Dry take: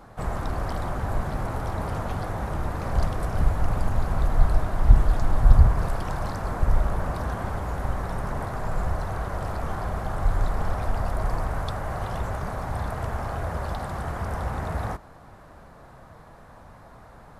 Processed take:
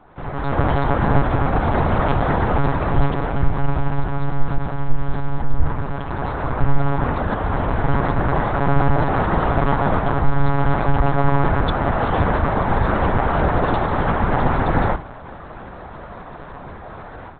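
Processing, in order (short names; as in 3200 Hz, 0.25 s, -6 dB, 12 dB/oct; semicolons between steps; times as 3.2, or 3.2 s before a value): notches 50/100/150/200 Hz; AGC gain up to 14 dB; monotone LPC vocoder at 8 kHz 140 Hz; gain -1.5 dB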